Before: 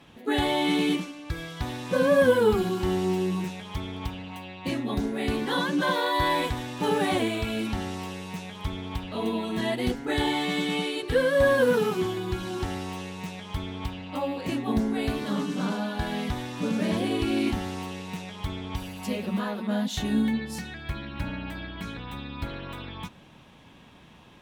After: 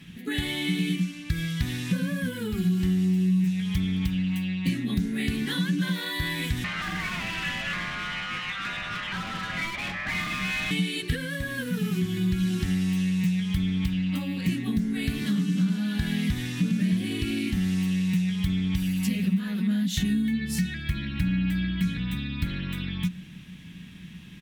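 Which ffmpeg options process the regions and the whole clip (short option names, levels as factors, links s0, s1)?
-filter_complex "[0:a]asettb=1/sr,asplit=3[s0][s1][s2];[s0]atrim=end=6.644[s3];[s1]atrim=start=6.64:end=10.71,asetpts=PTS-STARTPTS,afade=t=in:d=0.004:c=qsin,afade=t=out:st=4.066:d=0.004:c=qsin,highpass=580,lowpass=2100,afreqshift=330,asplit=2[s4][s5];[s5]highpass=f=720:p=1,volume=28.2,asoftclip=type=tanh:threshold=0.126[s6];[s4][s6]amix=inputs=2:normalize=0,lowpass=f=1200:p=1,volume=0.501[s7];[s2]atrim=start=10.706[s8];[s3][s7]acrossfade=d=0.004:c1=hsin:c2=qsin[s9];[s9][s8]acrossfade=d=0.004:c1=qsin:c2=hsin,equalizer=f=180:t=o:w=0.25:g=13,acompressor=threshold=0.0447:ratio=6,firequalizer=gain_entry='entry(180,0);entry(550,-19);entry(900,-19);entry(1800,0);entry(4100,-2);entry(13000,3)':delay=0.05:min_phase=1,volume=2.11"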